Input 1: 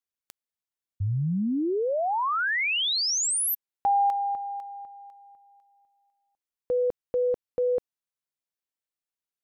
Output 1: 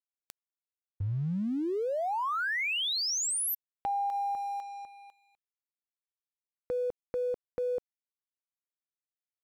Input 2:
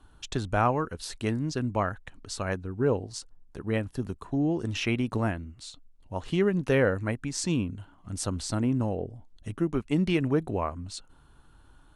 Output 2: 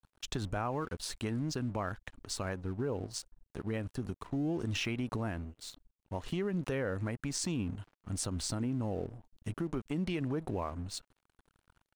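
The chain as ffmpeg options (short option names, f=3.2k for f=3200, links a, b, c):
-af "aeval=exprs='sgn(val(0))*max(abs(val(0))-0.00299,0)':c=same,acompressor=threshold=-29dB:ratio=6:attack=1.8:release=93:knee=1:detection=rms"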